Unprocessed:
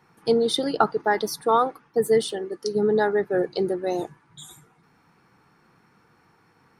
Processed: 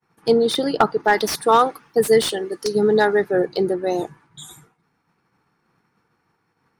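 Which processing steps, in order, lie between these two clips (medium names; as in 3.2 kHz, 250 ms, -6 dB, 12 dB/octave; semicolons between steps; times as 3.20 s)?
expander -51 dBFS; 1.05–3.31 s: treble shelf 2.5 kHz +10 dB; slew-rate limiter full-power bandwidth 270 Hz; trim +4 dB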